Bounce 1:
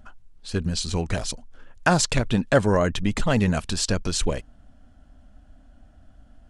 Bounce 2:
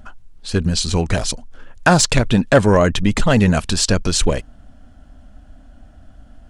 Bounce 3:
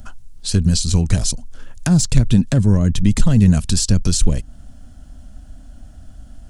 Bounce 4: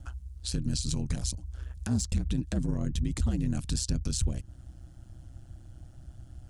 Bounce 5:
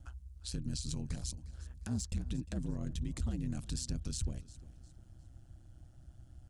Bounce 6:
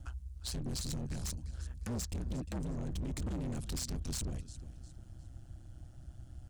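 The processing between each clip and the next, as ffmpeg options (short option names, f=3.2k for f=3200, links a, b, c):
-af "acontrast=73,volume=1dB"
-filter_complex "[0:a]acrossover=split=280[a][b];[b]acompressor=threshold=-27dB:ratio=10[c];[a][c]amix=inputs=2:normalize=0,bass=f=250:g=7,treble=f=4k:g=14,volume=-2dB"
-af "alimiter=limit=-11dB:level=0:latency=1:release=198,aeval=exprs='val(0)*sin(2*PI*63*n/s)':c=same,volume=-7dB"
-af "aecho=1:1:354|708|1062:0.112|0.0393|0.0137,volume=-8dB"
-af "asoftclip=type=hard:threshold=-39dB,volume=5dB"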